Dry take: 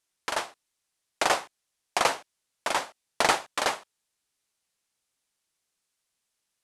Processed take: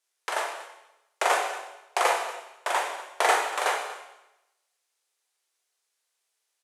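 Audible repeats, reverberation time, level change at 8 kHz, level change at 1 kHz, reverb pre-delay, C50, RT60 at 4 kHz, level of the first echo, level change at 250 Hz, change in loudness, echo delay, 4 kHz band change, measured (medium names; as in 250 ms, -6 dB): 1, 0.95 s, -0.5 dB, +2.5 dB, 17 ms, 4.0 dB, 0.90 s, -17.0 dB, -6.5 dB, +1.0 dB, 238 ms, -2.0 dB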